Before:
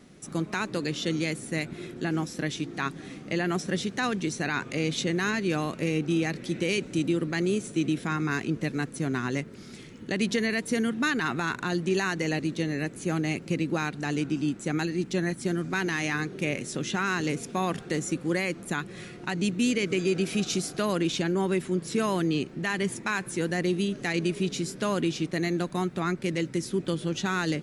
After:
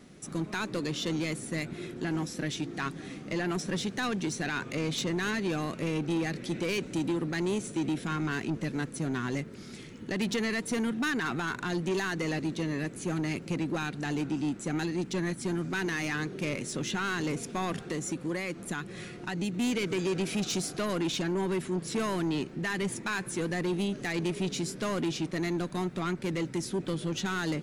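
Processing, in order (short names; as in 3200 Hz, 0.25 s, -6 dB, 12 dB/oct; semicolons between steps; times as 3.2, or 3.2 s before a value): 17.75–19.54 compressor 2.5:1, threshold -28 dBFS, peak gain reduction 4.5 dB; soft clip -24.5 dBFS, distortion -12 dB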